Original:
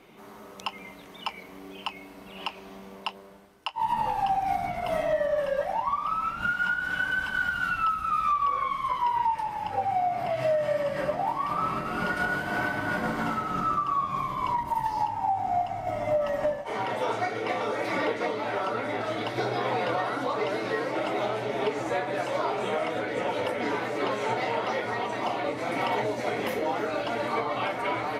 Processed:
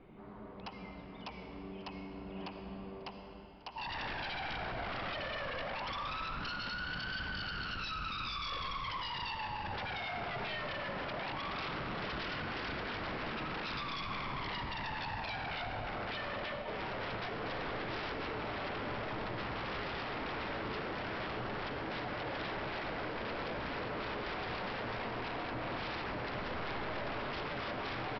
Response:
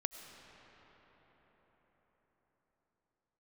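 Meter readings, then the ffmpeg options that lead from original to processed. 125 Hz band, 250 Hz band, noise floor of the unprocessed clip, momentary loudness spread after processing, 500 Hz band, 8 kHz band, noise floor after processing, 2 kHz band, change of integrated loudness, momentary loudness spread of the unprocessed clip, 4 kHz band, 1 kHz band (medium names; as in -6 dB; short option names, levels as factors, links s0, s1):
-4.5 dB, -8.0 dB, -46 dBFS, 7 LU, -13.5 dB, no reading, -49 dBFS, -8.5 dB, -10.5 dB, 11 LU, -2.0 dB, -13.0 dB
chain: -filter_complex "[0:a]lowpass=f=1900:p=1,aemphasis=mode=reproduction:type=bsi,aresample=11025,aeval=exprs='0.0316*(abs(mod(val(0)/0.0316+3,4)-2)-1)':c=same,aresample=44100,aecho=1:1:543:0.0841[s0];[1:a]atrim=start_sample=2205,asetrate=74970,aresample=44100[s1];[s0][s1]afir=irnorm=-1:irlink=0"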